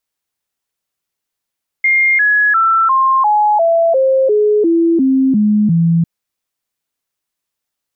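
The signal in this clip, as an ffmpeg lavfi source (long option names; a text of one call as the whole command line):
ffmpeg -f lavfi -i "aevalsrc='0.376*clip(min(mod(t,0.35),0.35-mod(t,0.35))/0.005,0,1)*sin(2*PI*2120*pow(2,-floor(t/0.35)/3)*mod(t,0.35))':duration=4.2:sample_rate=44100" out.wav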